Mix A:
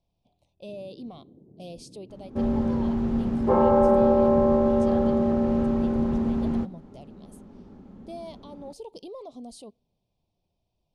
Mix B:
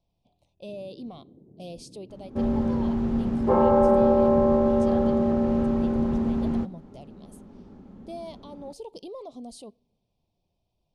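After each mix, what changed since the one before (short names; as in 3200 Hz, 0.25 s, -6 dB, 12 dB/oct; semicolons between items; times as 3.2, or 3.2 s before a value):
speech: send +6.5 dB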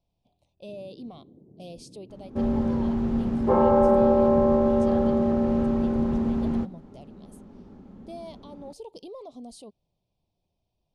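speech: send off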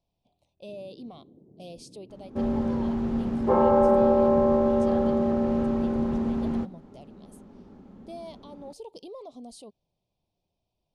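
master: add low shelf 190 Hz -4.5 dB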